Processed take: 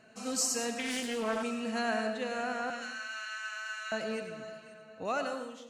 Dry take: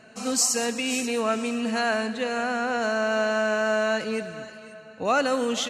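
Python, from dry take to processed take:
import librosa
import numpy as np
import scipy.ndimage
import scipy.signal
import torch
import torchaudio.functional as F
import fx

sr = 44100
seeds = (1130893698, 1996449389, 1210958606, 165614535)

y = fx.fade_out_tail(x, sr, length_s=0.73)
y = fx.highpass(y, sr, hz=1500.0, slope=24, at=(2.7, 3.92))
y = fx.rev_freeverb(y, sr, rt60_s=0.75, hf_ratio=0.5, predelay_ms=55, drr_db=7.0)
y = fx.doppler_dist(y, sr, depth_ms=0.29, at=(0.79, 1.43))
y = y * librosa.db_to_amplitude(-8.5)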